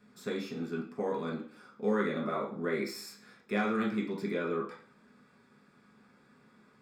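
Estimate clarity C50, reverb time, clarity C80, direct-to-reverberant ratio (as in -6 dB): 6.0 dB, 0.45 s, 11.5 dB, -4.0 dB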